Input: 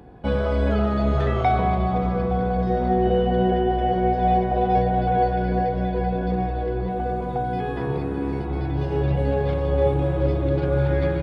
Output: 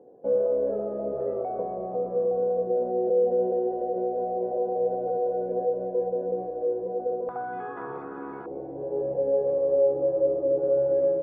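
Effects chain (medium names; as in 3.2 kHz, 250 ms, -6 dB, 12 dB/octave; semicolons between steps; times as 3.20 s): high-pass 310 Hz 12 dB/octave; peak limiter -16.5 dBFS, peak gain reduction 5.5 dB; resonant low-pass 520 Hz, resonance Q 4.8, from 7.29 s 1.3 kHz, from 8.46 s 540 Hz; trim -9 dB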